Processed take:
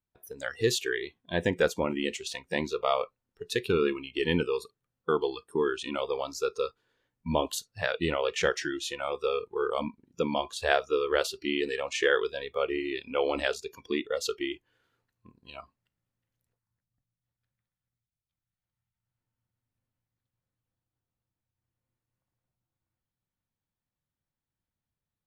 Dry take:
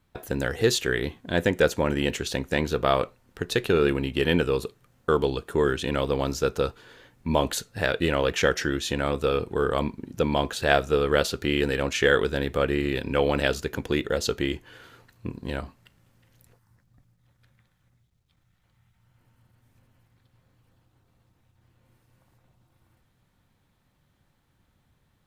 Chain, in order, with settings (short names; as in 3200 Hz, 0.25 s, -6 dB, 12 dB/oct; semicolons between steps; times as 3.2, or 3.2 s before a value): spectral noise reduction 20 dB; gain -4 dB